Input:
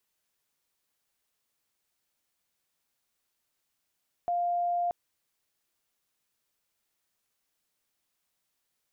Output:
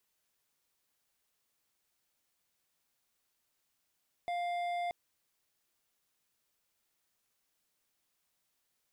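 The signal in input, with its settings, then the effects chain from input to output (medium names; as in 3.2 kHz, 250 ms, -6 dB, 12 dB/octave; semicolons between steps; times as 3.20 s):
tone sine 700 Hz -25.5 dBFS 0.63 s
hard clipper -34.5 dBFS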